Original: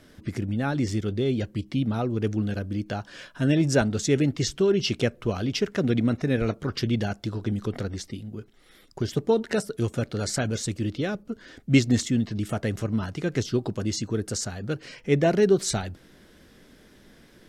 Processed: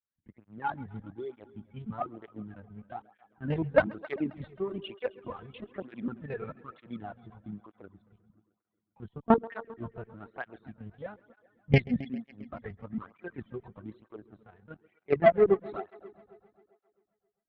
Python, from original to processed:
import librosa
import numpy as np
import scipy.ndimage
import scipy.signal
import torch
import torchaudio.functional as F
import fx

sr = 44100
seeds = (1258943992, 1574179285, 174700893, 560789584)

y = fx.bin_expand(x, sr, power=2.0)
y = scipy.signal.sosfilt(scipy.signal.butter(2, 2300.0, 'lowpass', fs=sr, output='sos'), y)
y = fx.peak_eq(y, sr, hz=870.0, db=11.0, octaves=2.0)
y = fx.leveller(y, sr, passes=1)
y = fx.lpc_vocoder(y, sr, seeds[0], excitation='pitch_kept', order=8)
y = fx.cheby_harmonics(y, sr, harmonics=(3,), levels_db=(-13,), full_scale_db=-2.0)
y = fx.echo_heads(y, sr, ms=133, heads='first and second', feedback_pct=53, wet_db=-22.0)
y = fx.flanger_cancel(y, sr, hz=1.1, depth_ms=3.8)